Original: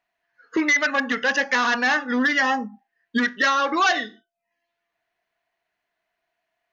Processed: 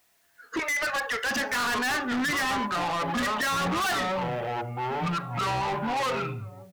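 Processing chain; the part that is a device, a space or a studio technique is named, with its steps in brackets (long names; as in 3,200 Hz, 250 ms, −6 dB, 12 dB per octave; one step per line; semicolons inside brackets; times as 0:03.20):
notch filter 510 Hz, Q 12
0:00.59–0:01.31: Butterworth high-pass 400 Hz 72 dB per octave
slap from a distant wall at 300 metres, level −22 dB
delay with pitch and tempo change per echo 564 ms, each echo −6 semitones, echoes 2, each echo −6 dB
open-reel tape (soft clipping −29.5 dBFS, distortion −5 dB; parametric band 93 Hz +4 dB 0.84 octaves; white noise bed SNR 38 dB)
level +4 dB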